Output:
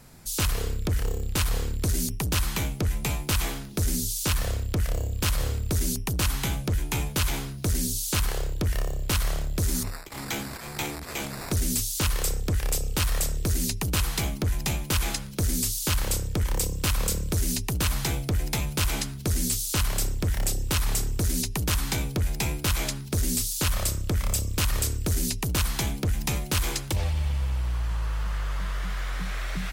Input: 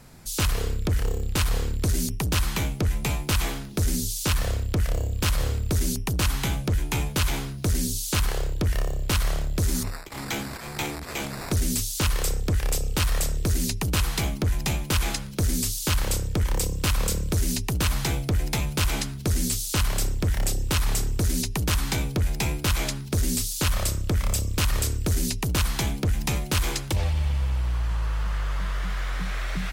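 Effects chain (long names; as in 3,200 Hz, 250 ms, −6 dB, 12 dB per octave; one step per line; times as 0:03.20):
high-shelf EQ 7,300 Hz +4.5 dB
level −2 dB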